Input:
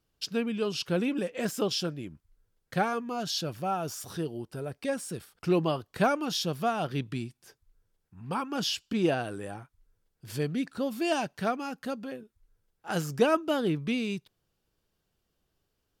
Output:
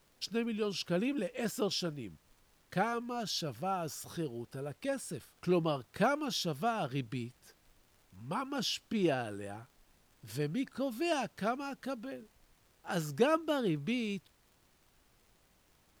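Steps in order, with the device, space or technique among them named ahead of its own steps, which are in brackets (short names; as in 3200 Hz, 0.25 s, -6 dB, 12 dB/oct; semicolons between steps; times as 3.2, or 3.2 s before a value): vinyl LP (crackle; pink noise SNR 32 dB); gain -4.5 dB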